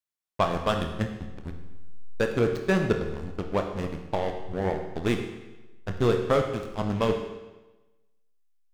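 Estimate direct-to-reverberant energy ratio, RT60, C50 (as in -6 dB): 4.0 dB, 1.1 s, 6.5 dB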